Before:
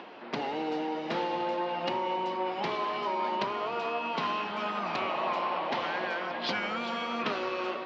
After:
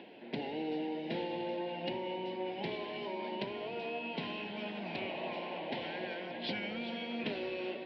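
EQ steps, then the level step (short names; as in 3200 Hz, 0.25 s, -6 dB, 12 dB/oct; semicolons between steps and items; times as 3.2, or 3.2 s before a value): low shelf 390 Hz +4.5 dB; fixed phaser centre 2900 Hz, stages 4; -4.5 dB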